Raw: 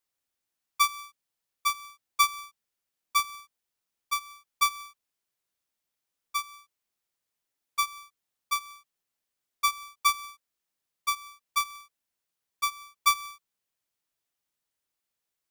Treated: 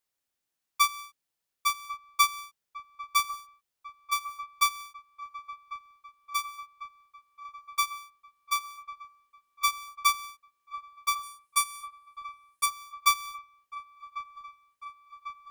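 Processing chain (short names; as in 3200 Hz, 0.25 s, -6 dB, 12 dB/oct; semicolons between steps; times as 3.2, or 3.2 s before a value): 11.23–12.66 bell 9500 Hz +13 dB 0.49 oct; on a send: dark delay 1.097 s, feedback 74%, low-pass 1800 Hz, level -13 dB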